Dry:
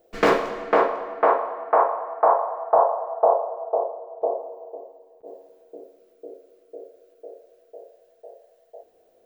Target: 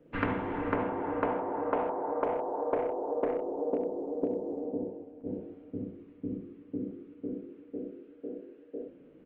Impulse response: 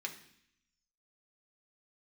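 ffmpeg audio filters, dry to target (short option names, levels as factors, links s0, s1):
-filter_complex "[0:a]acrossover=split=160|2300[s0][s1][s2];[s1]aeval=exprs='clip(val(0),-1,0.211)':c=same[s3];[s0][s3][s2]amix=inputs=3:normalize=0,highpass=f=160:t=q:w=0.5412,highpass=f=160:t=q:w=1.307,lowpass=f=3100:t=q:w=0.5176,lowpass=f=3100:t=q:w=0.7071,lowpass=f=3100:t=q:w=1.932,afreqshift=-190,bandreject=f=68.98:t=h:w=4,bandreject=f=137.96:t=h:w=4,bandreject=f=206.94:t=h:w=4,bandreject=f=275.92:t=h:w=4,bandreject=f=344.9:t=h:w=4,bandreject=f=413.88:t=h:w=4,bandreject=f=482.86:t=h:w=4,bandreject=f=551.84:t=h:w=4,bandreject=f=620.82:t=h:w=4,bandreject=f=689.8:t=h:w=4,bandreject=f=758.78:t=h:w=4,bandreject=f=827.76:t=h:w=4,bandreject=f=896.74:t=h:w=4,bandreject=f=965.72:t=h:w=4,bandreject=f=1034.7:t=h:w=4,bandreject=f=1103.68:t=h:w=4,bandreject=f=1172.66:t=h:w=4,bandreject=f=1241.64:t=h:w=4,bandreject=f=1310.62:t=h:w=4,asplit=2[s4][s5];[s5]aecho=0:1:46|67:0.158|0.562[s6];[s4][s6]amix=inputs=2:normalize=0,acompressor=threshold=0.0282:ratio=20,volume=1.58" -ar 48000 -c:a libopus -b:a 24k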